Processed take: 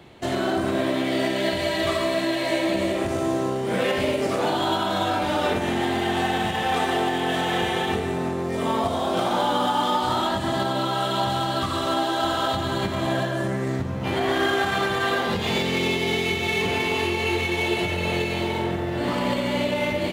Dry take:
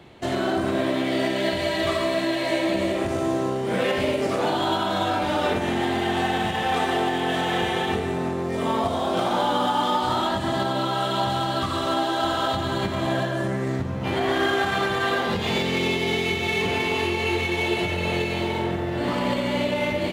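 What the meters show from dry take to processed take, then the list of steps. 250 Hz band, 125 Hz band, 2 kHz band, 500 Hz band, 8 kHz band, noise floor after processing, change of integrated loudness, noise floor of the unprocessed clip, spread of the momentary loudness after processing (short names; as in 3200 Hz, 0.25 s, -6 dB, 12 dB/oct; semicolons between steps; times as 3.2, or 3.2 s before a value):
0.0 dB, 0.0 dB, 0.0 dB, 0.0 dB, +2.0 dB, -27 dBFS, 0.0 dB, -27 dBFS, 3 LU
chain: high shelf 7500 Hz +4 dB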